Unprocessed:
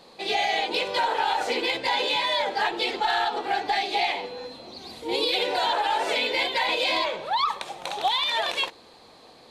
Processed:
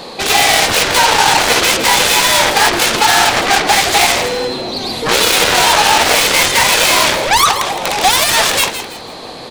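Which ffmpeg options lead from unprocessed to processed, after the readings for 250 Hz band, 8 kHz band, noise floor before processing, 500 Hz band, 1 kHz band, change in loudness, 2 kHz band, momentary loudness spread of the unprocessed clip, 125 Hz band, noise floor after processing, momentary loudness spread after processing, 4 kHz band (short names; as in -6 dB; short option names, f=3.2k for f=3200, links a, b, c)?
+14.5 dB, +31.0 dB, -51 dBFS, +11.5 dB, +12.5 dB, +14.5 dB, +15.5 dB, 8 LU, n/a, -29 dBFS, 9 LU, +14.0 dB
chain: -filter_complex "[0:a]acrossover=split=3100[a][b];[b]acompressor=threshold=-35dB:ratio=4:attack=1:release=60[c];[a][c]amix=inputs=2:normalize=0,aeval=exprs='0.188*(cos(1*acos(clip(val(0)/0.188,-1,1)))-cos(1*PI/2))+0.0266*(cos(5*acos(clip(val(0)/0.188,-1,1)))-cos(5*PI/2))+0.075*(cos(7*acos(clip(val(0)/0.188,-1,1)))-cos(7*PI/2))':c=same,apsyclip=25.5dB,dynaudnorm=f=110:g=11:m=4.5dB,asplit=2[d][e];[e]asplit=4[f][g][h][i];[f]adelay=164,afreqshift=-120,volume=-10.5dB[j];[g]adelay=328,afreqshift=-240,volume=-20.1dB[k];[h]adelay=492,afreqshift=-360,volume=-29.8dB[l];[i]adelay=656,afreqshift=-480,volume=-39.4dB[m];[j][k][l][m]amix=inputs=4:normalize=0[n];[d][n]amix=inputs=2:normalize=0,volume=-4dB"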